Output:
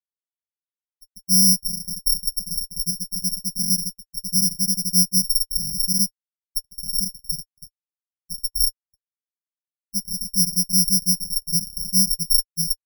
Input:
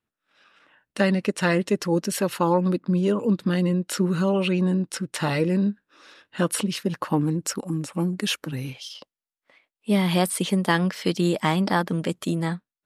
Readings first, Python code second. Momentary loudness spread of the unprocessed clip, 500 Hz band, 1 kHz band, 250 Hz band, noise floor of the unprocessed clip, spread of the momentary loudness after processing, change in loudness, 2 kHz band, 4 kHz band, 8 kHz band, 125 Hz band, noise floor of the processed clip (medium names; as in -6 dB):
8 LU, under -40 dB, under -40 dB, -8.0 dB, under -85 dBFS, 12 LU, +4.5 dB, under -40 dB, +9.0 dB, +14.0 dB, -8.0 dB, under -85 dBFS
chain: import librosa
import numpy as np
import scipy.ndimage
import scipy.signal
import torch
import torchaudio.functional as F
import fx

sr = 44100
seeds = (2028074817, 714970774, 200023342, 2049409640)

p1 = scipy.signal.sosfilt(scipy.signal.ellip(3, 1.0, 40, [220.0, 860.0], 'bandstop', fs=sr, output='sos'), x)
p2 = fx.peak_eq(p1, sr, hz=99.0, db=13.5, octaves=2.4)
p3 = p2 + fx.echo_filtered(p2, sr, ms=165, feedback_pct=25, hz=1100.0, wet_db=-20, dry=0)
p4 = fx.rev_gated(p3, sr, seeds[0], gate_ms=440, shape='rising', drr_db=-7.0)
p5 = fx.schmitt(p4, sr, flips_db=-7.0)
p6 = fx.lowpass(p5, sr, hz=3300.0, slope=6)
p7 = (np.kron(scipy.signal.resample_poly(p6, 1, 8), np.eye(8)[0]) * 8)[:len(p6)]
p8 = fx.spectral_expand(p7, sr, expansion=4.0)
y = F.gain(torch.from_numpy(p8), -15.0).numpy()